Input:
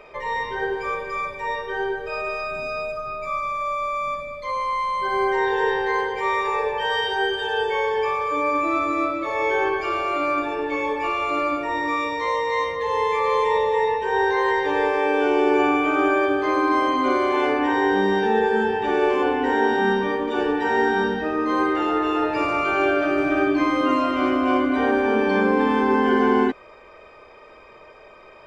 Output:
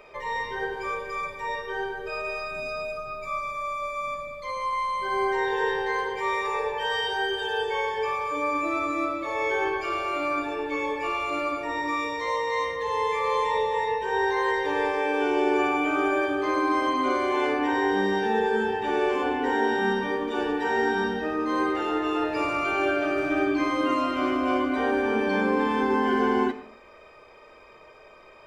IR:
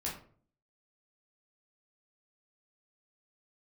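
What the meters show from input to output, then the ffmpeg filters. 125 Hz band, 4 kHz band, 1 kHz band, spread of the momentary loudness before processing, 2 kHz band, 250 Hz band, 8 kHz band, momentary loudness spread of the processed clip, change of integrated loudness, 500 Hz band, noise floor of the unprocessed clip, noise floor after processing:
-4.5 dB, -2.5 dB, -4.5 dB, 7 LU, -3.5 dB, -4.5 dB, n/a, 7 LU, -4.5 dB, -5.0 dB, -46 dBFS, -50 dBFS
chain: -filter_complex "[0:a]highshelf=f=6.1k:g=8.5,flanger=delay=10:depth=9.7:regen=-83:speed=0.11:shape=triangular,asplit=2[a][b];[1:a]atrim=start_sample=2205,adelay=90[c];[b][c]afir=irnorm=-1:irlink=0,volume=-18dB[d];[a][d]amix=inputs=2:normalize=0"

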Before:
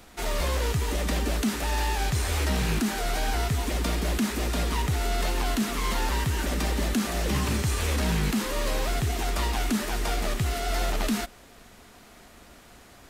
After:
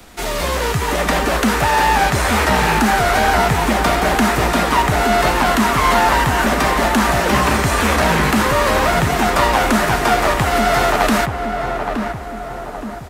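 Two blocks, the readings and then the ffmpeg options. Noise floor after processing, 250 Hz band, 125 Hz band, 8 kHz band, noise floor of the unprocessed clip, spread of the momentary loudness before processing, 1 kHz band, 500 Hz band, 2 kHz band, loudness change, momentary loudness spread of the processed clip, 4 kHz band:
-28 dBFS, +10.5 dB, +7.0 dB, +8.5 dB, -51 dBFS, 2 LU, +18.5 dB, +15.0 dB, +16.0 dB, +12.0 dB, 7 LU, +10.0 dB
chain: -filter_complex "[0:a]acrossover=split=100|650|1900[a][b][c][d];[a]asoftclip=type=tanh:threshold=-34.5dB[e];[c]dynaudnorm=f=110:g=13:m=11dB[f];[e][b][f][d]amix=inputs=4:normalize=0,asplit=2[g][h];[h]adelay=869,lowpass=f=1.3k:p=1,volume=-4.5dB,asplit=2[i][j];[j]adelay=869,lowpass=f=1.3k:p=1,volume=0.52,asplit=2[k][l];[l]adelay=869,lowpass=f=1.3k:p=1,volume=0.52,asplit=2[m][n];[n]adelay=869,lowpass=f=1.3k:p=1,volume=0.52,asplit=2[o][p];[p]adelay=869,lowpass=f=1.3k:p=1,volume=0.52,asplit=2[q][r];[r]adelay=869,lowpass=f=1.3k:p=1,volume=0.52,asplit=2[s][t];[t]adelay=869,lowpass=f=1.3k:p=1,volume=0.52[u];[g][i][k][m][o][q][s][u]amix=inputs=8:normalize=0,volume=8.5dB"

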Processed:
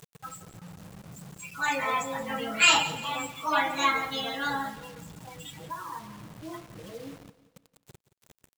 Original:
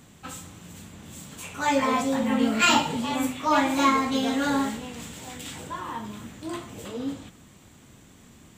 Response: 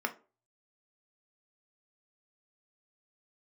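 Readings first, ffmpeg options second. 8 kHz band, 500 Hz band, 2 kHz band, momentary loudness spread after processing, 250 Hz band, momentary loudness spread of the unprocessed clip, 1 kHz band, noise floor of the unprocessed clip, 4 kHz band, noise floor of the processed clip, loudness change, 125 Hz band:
-0.5 dB, -6.5 dB, +1.5 dB, 23 LU, -13.5 dB, 20 LU, -3.5 dB, -53 dBFS, +1.0 dB, -77 dBFS, -1.5 dB, -4.5 dB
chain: -filter_complex "[0:a]afftdn=nr=31:nf=-34,equalizer=f=280:w=0.52:g=-13.5,aecho=1:1:6.1:0.82,acompressor=mode=upward:threshold=-37dB:ratio=2.5,acrusher=bits=7:mix=0:aa=0.000001,asplit=2[a][b];[b]aecho=0:1:173|346|519|692:0.158|0.0682|0.0293|0.0126[c];[a][c]amix=inputs=2:normalize=0"

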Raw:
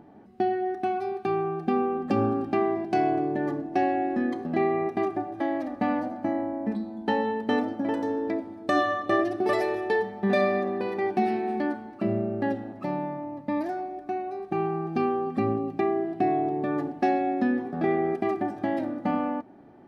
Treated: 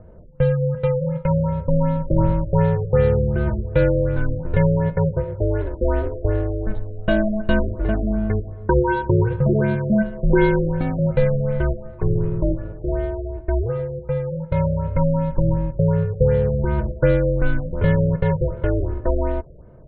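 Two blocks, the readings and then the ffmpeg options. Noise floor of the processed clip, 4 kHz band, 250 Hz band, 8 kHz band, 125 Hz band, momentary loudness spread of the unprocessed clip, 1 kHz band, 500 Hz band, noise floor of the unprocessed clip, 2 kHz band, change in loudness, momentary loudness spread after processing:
-38 dBFS, 0.0 dB, +4.0 dB, n/a, +19.5 dB, 6 LU, -3.5 dB, +5.5 dB, -46 dBFS, +3.0 dB, +6.5 dB, 7 LU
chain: -af "adynamicsmooth=sensitivity=3.5:basefreq=1.6k,afreqshift=-230,afftfilt=real='re*lt(b*sr/1024,610*pow(4500/610,0.5+0.5*sin(2*PI*2.7*pts/sr)))':imag='im*lt(b*sr/1024,610*pow(4500/610,0.5+0.5*sin(2*PI*2.7*pts/sr)))':win_size=1024:overlap=0.75,volume=8dB"

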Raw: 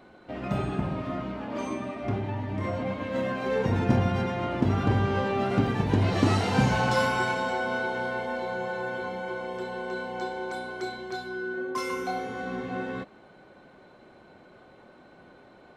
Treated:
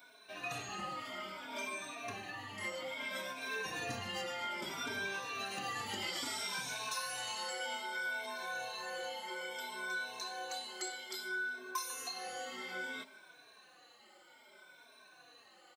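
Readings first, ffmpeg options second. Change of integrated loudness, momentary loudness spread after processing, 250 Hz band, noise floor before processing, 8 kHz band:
-11.0 dB, 20 LU, -22.5 dB, -54 dBFS, +3.5 dB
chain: -filter_complex "[0:a]afftfilt=real='re*pow(10,13/40*sin(2*PI*(1.6*log(max(b,1)*sr/1024/100)/log(2)-(0.61)*(pts-256)/sr)))':imag='im*pow(10,13/40*sin(2*PI*(1.6*log(max(b,1)*sr/1024/100)/log(2)-(0.61)*(pts-256)/sr)))':win_size=1024:overlap=0.75,aderivative,bandreject=f=53.55:t=h:w=4,bandreject=f=107.1:t=h:w=4,bandreject=f=160.65:t=h:w=4,bandreject=f=214.2:t=h:w=4,bandreject=f=267.75:t=h:w=4,acompressor=threshold=-44dB:ratio=20,asplit=2[a][b];[b]asplit=5[c][d][e][f][g];[c]adelay=183,afreqshift=40,volume=-23dB[h];[d]adelay=366,afreqshift=80,volume=-27.2dB[i];[e]adelay=549,afreqshift=120,volume=-31.3dB[j];[f]adelay=732,afreqshift=160,volume=-35.5dB[k];[g]adelay=915,afreqshift=200,volume=-39.6dB[l];[h][i][j][k][l]amix=inputs=5:normalize=0[m];[a][m]amix=inputs=2:normalize=0,asplit=2[n][o];[o]adelay=3.6,afreqshift=-2.1[p];[n][p]amix=inputs=2:normalize=1,volume=11dB"

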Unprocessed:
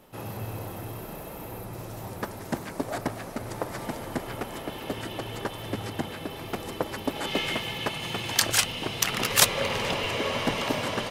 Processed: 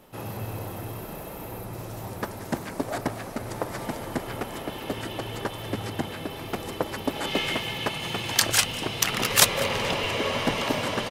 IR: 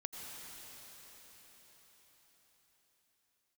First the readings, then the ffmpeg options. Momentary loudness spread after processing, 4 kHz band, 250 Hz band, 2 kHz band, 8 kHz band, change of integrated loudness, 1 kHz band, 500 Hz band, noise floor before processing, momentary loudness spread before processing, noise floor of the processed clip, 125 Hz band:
15 LU, +1.5 dB, +1.5 dB, +1.5 dB, +1.5 dB, +1.5 dB, +1.5 dB, +1.5 dB, -40 dBFS, 16 LU, -38 dBFS, +1.5 dB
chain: -af "aecho=1:1:198:0.106,volume=1.5dB"

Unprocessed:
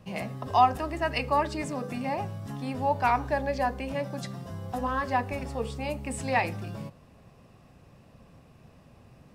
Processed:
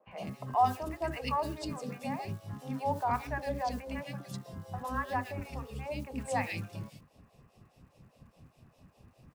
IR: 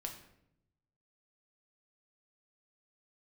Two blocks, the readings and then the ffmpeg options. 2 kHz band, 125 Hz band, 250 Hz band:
-7.5 dB, -4.5 dB, -5.5 dB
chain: -filter_complex "[0:a]acrossover=split=910[a][b];[a]aeval=exprs='val(0)*(1-1/2+1/2*cos(2*PI*4.9*n/s))':c=same[c];[b]aeval=exprs='val(0)*(1-1/2-1/2*cos(2*PI*4.9*n/s))':c=same[d];[c][d]amix=inputs=2:normalize=0,acrusher=bits=7:mode=log:mix=0:aa=0.000001,acrossover=split=430|2200[e][f][g];[e]adelay=70[h];[g]adelay=110[i];[h][f][i]amix=inputs=3:normalize=0"

